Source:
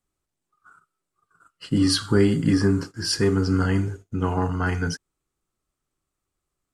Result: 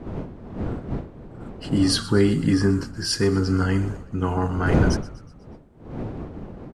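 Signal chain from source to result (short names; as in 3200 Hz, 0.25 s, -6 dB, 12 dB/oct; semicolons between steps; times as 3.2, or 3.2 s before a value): wind noise 300 Hz -30 dBFS; frequency-shifting echo 0.123 s, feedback 55%, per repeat -56 Hz, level -18 dB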